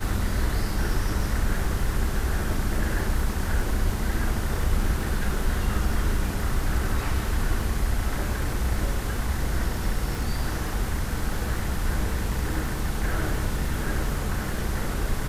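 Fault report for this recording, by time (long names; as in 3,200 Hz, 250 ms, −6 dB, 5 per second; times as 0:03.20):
surface crackle 23 per second −32 dBFS
0:10.15: click
0:13.86: drop-out 2.7 ms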